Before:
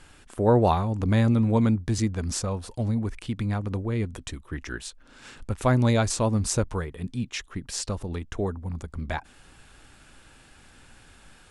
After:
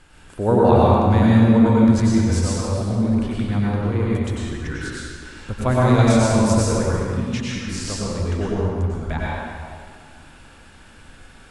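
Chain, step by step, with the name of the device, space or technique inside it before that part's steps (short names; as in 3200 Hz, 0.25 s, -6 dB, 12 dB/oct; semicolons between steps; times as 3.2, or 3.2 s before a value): swimming-pool hall (reverb RT60 2.1 s, pre-delay 89 ms, DRR -6.5 dB; high shelf 4800 Hz -4.5 dB)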